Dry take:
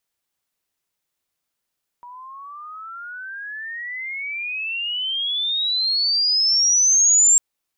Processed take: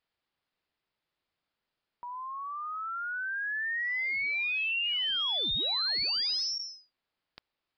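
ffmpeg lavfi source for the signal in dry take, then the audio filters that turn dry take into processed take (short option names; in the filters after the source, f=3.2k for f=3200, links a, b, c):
-f lavfi -i "aevalsrc='pow(10,(-10.5+26*(t/5.35-1))/20)*sin(2*PI*961*5.35/(35.5*log(2)/12)*(exp(35.5*log(2)/12*t/5.35)-1))':d=5.35:s=44100"
-af "lowpass=f=3.9k:p=1,aresample=11025,asoftclip=type=hard:threshold=-29dB,aresample=44100"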